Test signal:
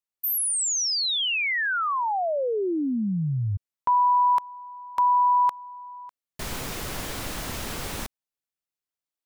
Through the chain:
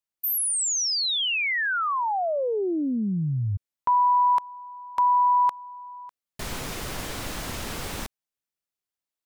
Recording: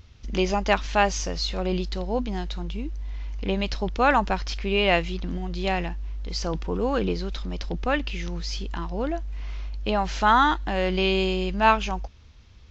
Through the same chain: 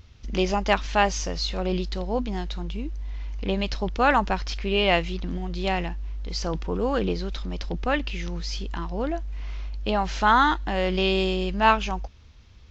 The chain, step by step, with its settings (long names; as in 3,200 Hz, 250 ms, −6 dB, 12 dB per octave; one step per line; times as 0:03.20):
highs frequency-modulated by the lows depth 0.1 ms